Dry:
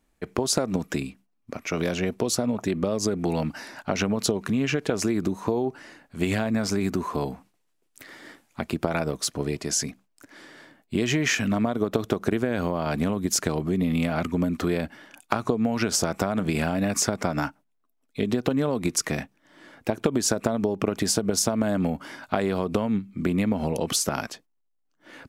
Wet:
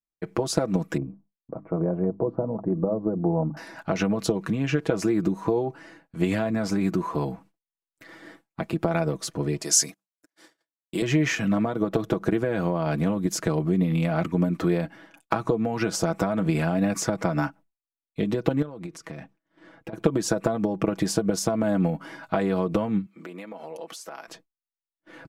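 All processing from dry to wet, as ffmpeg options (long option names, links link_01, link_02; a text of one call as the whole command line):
ffmpeg -i in.wav -filter_complex "[0:a]asettb=1/sr,asplit=3[link_01][link_02][link_03];[link_01]atrim=end=0.974[link_04];[link_02]atrim=start=0.97:end=3.57,asetpts=PTS-STARTPTS,afade=type=in:duration=0.004:curve=qsin,afade=type=out:start_time=2.596:duration=0.004:curve=qsin,lowpass=frequency=1000:width=0.5412,lowpass=frequency=1000:width=1.3066,bandreject=frequency=50:width_type=h:width=6,bandreject=frequency=100:width_type=h:width=6,bandreject=frequency=150:width_type=h:width=6,bandreject=frequency=200:width_type=h:width=6,bandreject=frequency=250:width_type=h:width=6,bandreject=frequency=300:width_type=h:width=6[link_05];[link_03]atrim=start=3.566[link_06];[link_04][link_05]acrossfade=duration=0.004:curve1=hsin:curve2=qsin[link_07];[link_07][link_06]acrossfade=duration=0.004:curve1=qsin:curve2=hsin,asettb=1/sr,asplit=3[link_08][link_09][link_10];[link_08]atrim=end=9.614[link_11];[link_09]atrim=start=9.61:end=11.02,asetpts=PTS-STARTPTS,afade=type=in:duration=0.004:curve=qsin,afade=type=out:start_time=1.406:duration=0.004:curve=qsin,highpass=63,bass=frequency=250:gain=-11,treble=frequency=4000:gain=14,agate=range=-20dB:threshold=-45dB:ratio=16:release=100:detection=peak[link_12];[link_10]atrim=start=11.016[link_13];[link_11][link_12]acrossfade=duration=0.004:curve1=hsin:curve2=qsin[link_14];[link_14][link_13]acrossfade=duration=0.004:curve1=qsin:curve2=hsin,asettb=1/sr,asplit=3[link_15][link_16][link_17];[link_15]atrim=end=18.624[link_18];[link_16]atrim=start=18.62:end=19.93,asetpts=PTS-STARTPTS,afade=type=in:duration=0.004:curve=qsin,afade=type=out:start_time=1.306:duration=0.004:curve=qsin,highshelf=frequency=9800:gain=-10,acompressor=threshold=-33dB:ratio=16:attack=3.2:release=140:knee=1:detection=peak[link_19];[link_17]atrim=start=19.926[link_20];[link_18][link_19]acrossfade=duration=0.004:curve1=hsin:curve2=qsin[link_21];[link_21][link_20]acrossfade=duration=0.004:curve1=qsin:curve2=hsin,asettb=1/sr,asplit=3[link_22][link_23][link_24];[link_22]atrim=end=23.064[link_25];[link_23]atrim=start=23.06:end=24.28,asetpts=PTS-STARTPTS,afade=type=in:duration=0.004:curve=qsin,afade=type=out:start_time=1.216:duration=0.004:curve=qsin,highpass=490,acompressor=threshold=-41dB:ratio=2:attack=3.2:release=140:knee=1:detection=peak[link_26];[link_24]atrim=start=24.276[link_27];[link_25][link_26]acrossfade=duration=0.004:curve1=hsin:curve2=qsin[link_28];[link_28][link_27]acrossfade=duration=0.004:curve1=qsin:curve2=hsin,highshelf=frequency=2300:gain=-8.5,agate=range=-33dB:threshold=-48dB:ratio=3:detection=peak,aecho=1:1:6.1:0.64" out.wav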